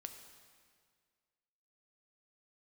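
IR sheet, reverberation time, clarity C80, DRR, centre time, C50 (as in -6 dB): 1.9 s, 8.5 dB, 6.0 dB, 30 ms, 7.5 dB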